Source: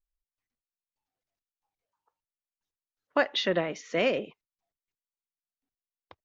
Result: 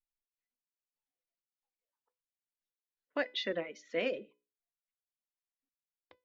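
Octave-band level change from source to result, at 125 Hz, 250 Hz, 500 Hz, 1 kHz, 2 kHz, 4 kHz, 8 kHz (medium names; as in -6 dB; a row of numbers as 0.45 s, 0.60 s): -14.0 dB, -9.0 dB, -8.0 dB, -13.0 dB, -8.0 dB, -8.0 dB, no reading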